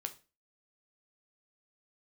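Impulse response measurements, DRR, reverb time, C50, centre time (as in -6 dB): 6.5 dB, 0.30 s, 15.5 dB, 6 ms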